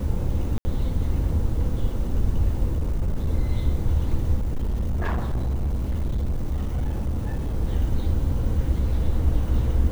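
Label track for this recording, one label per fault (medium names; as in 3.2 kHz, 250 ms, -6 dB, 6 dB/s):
0.580000	0.650000	dropout 70 ms
2.740000	3.290000	clipped -19.5 dBFS
4.360000	7.560000	clipped -21 dBFS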